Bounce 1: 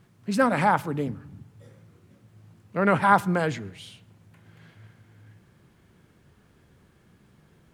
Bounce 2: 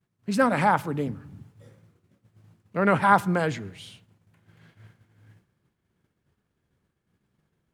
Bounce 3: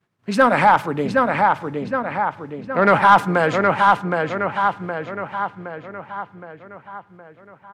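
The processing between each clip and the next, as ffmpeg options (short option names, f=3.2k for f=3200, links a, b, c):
-af "agate=range=-33dB:threshold=-47dB:ratio=3:detection=peak"
-filter_complex "[0:a]asplit=2[a][b];[b]adelay=767,lowpass=f=3.8k:p=1,volume=-3.5dB,asplit=2[c][d];[d]adelay=767,lowpass=f=3.8k:p=1,volume=0.53,asplit=2[e][f];[f]adelay=767,lowpass=f=3.8k:p=1,volume=0.53,asplit=2[g][h];[h]adelay=767,lowpass=f=3.8k:p=1,volume=0.53,asplit=2[i][j];[j]adelay=767,lowpass=f=3.8k:p=1,volume=0.53,asplit=2[k][l];[l]adelay=767,lowpass=f=3.8k:p=1,volume=0.53,asplit=2[m][n];[n]adelay=767,lowpass=f=3.8k:p=1,volume=0.53[o];[a][c][e][g][i][k][m][o]amix=inputs=8:normalize=0,asplit=2[p][q];[q]highpass=f=720:p=1,volume=13dB,asoftclip=type=tanh:threshold=-4.5dB[r];[p][r]amix=inputs=2:normalize=0,lowpass=f=2.1k:p=1,volume=-6dB,volume=4dB"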